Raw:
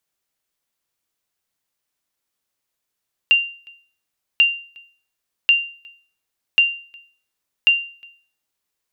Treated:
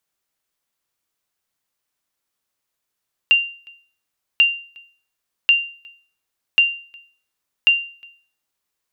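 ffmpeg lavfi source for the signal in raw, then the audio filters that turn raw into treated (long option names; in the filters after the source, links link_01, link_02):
-f lavfi -i "aevalsrc='0.473*(sin(2*PI*2780*mod(t,1.09))*exp(-6.91*mod(t,1.09)/0.43)+0.0355*sin(2*PI*2780*max(mod(t,1.09)-0.36,0))*exp(-6.91*max(mod(t,1.09)-0.36,0)/0.43))':duration=5.45:sample_rate=44100"
-af "equalizer=frequency=1200:width=1.5:gain=2"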